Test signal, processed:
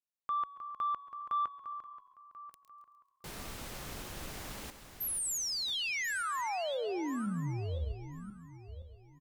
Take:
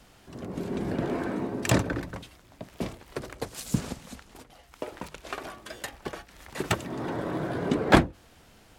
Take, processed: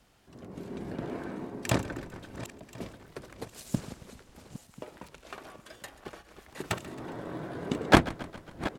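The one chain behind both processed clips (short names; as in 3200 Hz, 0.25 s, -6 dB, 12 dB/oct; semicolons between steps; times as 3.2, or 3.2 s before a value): regenerating reverse delay 0.519 s, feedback 47%, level -10 dB; added harmonics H 7 -21 dB, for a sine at -2 dBFS; frequency-shifting echo 0.136 s, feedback 59%, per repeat -33 Hz, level -18.5 dB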